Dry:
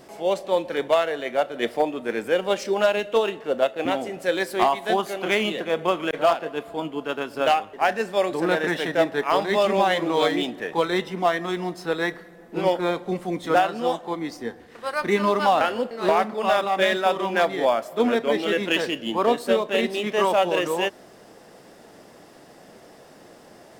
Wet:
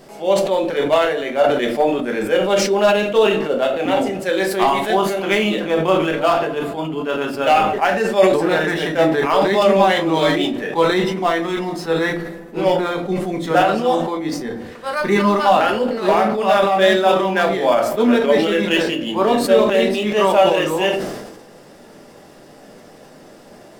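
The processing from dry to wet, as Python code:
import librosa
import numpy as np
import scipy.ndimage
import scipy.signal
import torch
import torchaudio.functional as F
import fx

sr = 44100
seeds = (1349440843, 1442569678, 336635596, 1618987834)

y = fx.room_shoebox(x, sr, seeds[0], volume_m3=150.0, walls='furnished', distance_m=1.2)
y = fx.sustainer(y, sr, db_per_s=48.0)
y = y * 10.0 ** (2.0 / 20.0)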